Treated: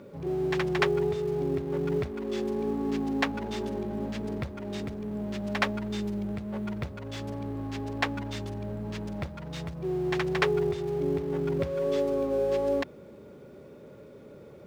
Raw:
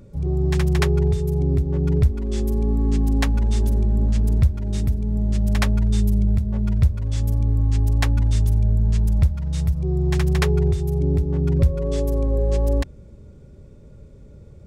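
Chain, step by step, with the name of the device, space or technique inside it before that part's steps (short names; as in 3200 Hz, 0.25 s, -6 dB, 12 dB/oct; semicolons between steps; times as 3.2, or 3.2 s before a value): phone line with mismatched companding (BPF 320–3500 Hz; G.711 law mismatch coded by mu)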